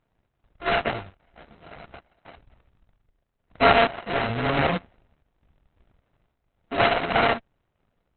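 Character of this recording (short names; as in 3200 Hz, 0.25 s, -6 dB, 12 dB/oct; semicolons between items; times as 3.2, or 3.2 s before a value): a buzz of ramps at a fixed pitch in blocks of 64 samples; random-step tremolo 3.5 Hz; aliases and images of a low sample rate 3500 Hz, jitter 20%; Opus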